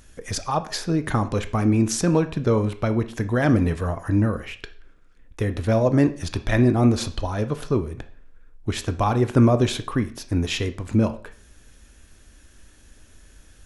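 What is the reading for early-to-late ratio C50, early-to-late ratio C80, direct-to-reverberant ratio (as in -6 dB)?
14.5 dB, 19.5 dB, 9.5 dB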